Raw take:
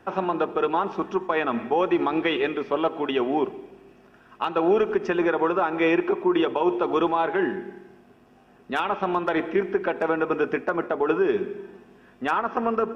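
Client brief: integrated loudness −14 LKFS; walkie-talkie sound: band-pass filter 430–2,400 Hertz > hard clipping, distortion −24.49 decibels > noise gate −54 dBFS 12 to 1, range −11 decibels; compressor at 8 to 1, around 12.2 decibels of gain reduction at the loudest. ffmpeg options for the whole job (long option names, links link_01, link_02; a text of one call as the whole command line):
ffmpeg -i in.wav -af "acompressor=threshold=-30dB:ratio=8,highpass=430,lowpass=2400,asoftclip=type=hard:threshold=-25dB,agate=range=-11dB:threshold=-54dB:ratio=12,volume=23.5dB" out.wav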